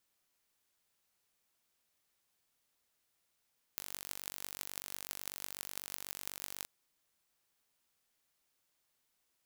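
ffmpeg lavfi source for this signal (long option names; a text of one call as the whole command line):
ffmpeg -f lavfi -i "aevalsrc='0.282*eq(mod(n,917),0)*(0.5+0.5*eq(mod(n,7336),0))':duration=2.87:sample_rate=44100" out.wav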